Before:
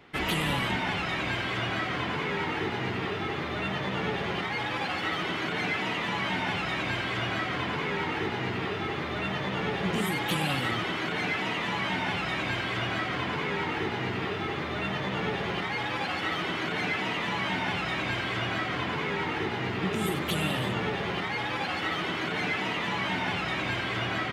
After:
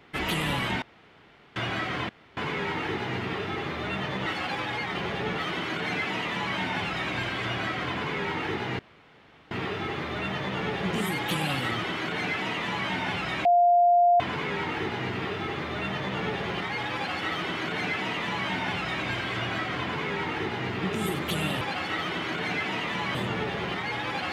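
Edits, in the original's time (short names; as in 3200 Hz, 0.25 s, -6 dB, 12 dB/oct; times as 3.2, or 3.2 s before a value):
0.82–1.56 room tone
2.09 insert room tone 0.28 s
3.98–5.1 reverse
8.51 insert room tone 0.72 s
12.45–13.2 bleep 701 Hz -16 dBFS
15.94–17.48 copy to 20.61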